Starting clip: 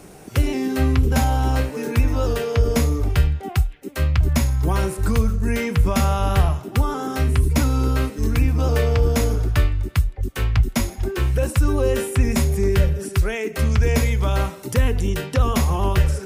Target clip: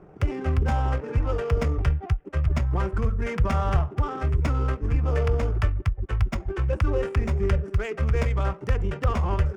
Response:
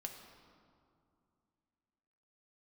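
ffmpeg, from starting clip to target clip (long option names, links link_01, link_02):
-af "adynamicsmooth=sensitivity=2.5:basefreq=1100,atempo=1.7,equalizer=frequency=250:width_type=o:width=0.33:gain=-9,equalizer=frequency=1250:width_type=o:width=0.33:gain=4,equalizer=frequency=4000:width_type=o:width=0.33:gain=-8,equalizer=frequency=12500:width_type=o:width=0.33:gain=-11,volume=-4dB"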